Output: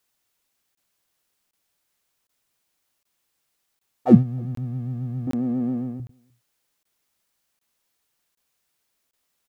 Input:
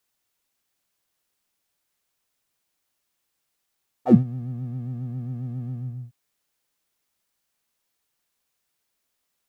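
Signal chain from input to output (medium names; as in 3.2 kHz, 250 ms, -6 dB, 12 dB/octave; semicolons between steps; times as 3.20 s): 5.27–6.00 s: graphic EQ 125/250/500/1000/2000 Hz -10/+12/+12/+6/+4 dB; echo from a far wall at 52 m, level -29 dB; crackling interface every 0.76 s, samples 1024, zero, from 0.75 s; trim +2.5 dB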